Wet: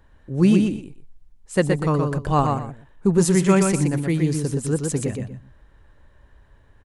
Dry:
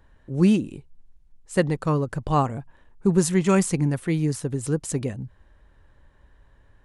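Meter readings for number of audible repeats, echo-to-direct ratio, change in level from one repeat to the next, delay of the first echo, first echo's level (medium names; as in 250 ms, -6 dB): 2, -4.5 dB, -13.0 dB, 121 ms, -4.5 dB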